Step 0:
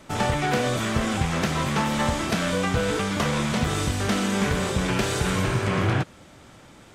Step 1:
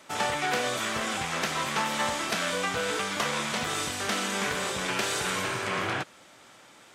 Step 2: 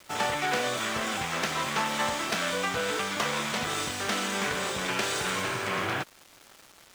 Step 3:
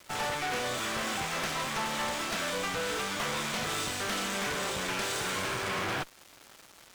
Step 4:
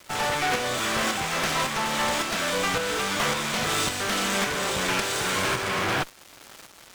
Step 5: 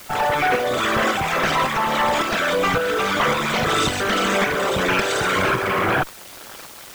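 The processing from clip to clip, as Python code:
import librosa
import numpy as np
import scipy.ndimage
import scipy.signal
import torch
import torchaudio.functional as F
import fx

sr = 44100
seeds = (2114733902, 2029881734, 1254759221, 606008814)

y1 = fx.highpass(x, sr, hz=810.0, slope=6)
y2 = scipy.ndimage.median_filter(y1, 3, mode='constant')
y2 = fx.quant_dither(y2, sr, seeds[0], bits=8, dither='none')
y3 = fx.rider(y2, sr, range_db=10, speed_s=0.5)
y3 = fx.tube_stage(y3, sr, drive_db=32.0, bias=0.8)
y3 = y3 * librosa.db_to_amplitude(3.5)
y4 = fx.tremolo_shape(y3, sr, shape='saw_up', hz=1.8, depth_pct=40)
y4 = y4 * librosa.db_to_amplitude(8.5)
y5 = fx.envelope_sharpen(y4, sr, power=2.0)
y5 = fx.quant_dither(y5, sr, seeds[1], bits=8, dither='triangular')
y5 = y5 * librosa.db_to_amplitude(6.0)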